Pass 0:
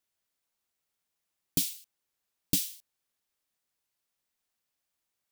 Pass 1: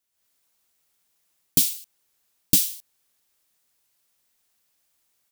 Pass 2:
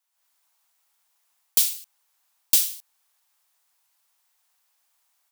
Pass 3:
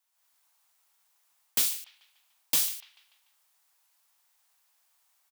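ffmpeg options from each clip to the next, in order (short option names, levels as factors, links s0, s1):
-af "highshelf=f=5000:g=5.5,dynaudnorm=f=120:g=3:m=2.82"
-af "highpass=f=870:t=q:w=2,acrusher=bits=5:mode=log:mix=0:aa=0.000001"
-filter_complex "[0:a]acrossover=split=210|900|3000[s0][s1][s2][s3];[s2]aecho=1:1:146|292|438|584|730:0.282|0.132|0.0623|0.0293|0.0138[s4];[s3]asoftclip=type=tanh:threshold=0.0944[s5];[s0][s1][s4][s5]amix=inputs=4:normalize=0"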